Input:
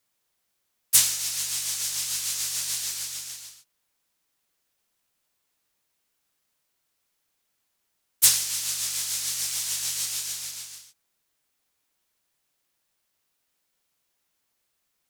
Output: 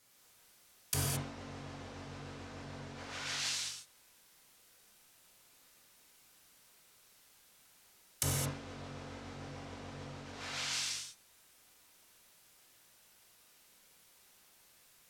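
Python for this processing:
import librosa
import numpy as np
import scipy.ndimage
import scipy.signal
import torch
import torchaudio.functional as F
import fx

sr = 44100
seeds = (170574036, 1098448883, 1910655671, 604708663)

y = fx.env_lowpass_down(x, sr, base_hz=480.0, full_db=-27.0)
y = fx.rev_gated(y, sr, seeds[0], gate_ms=240, shape='flat', drr_db=-4.0)
y = y * librosa.db_to_amplitude(7.5)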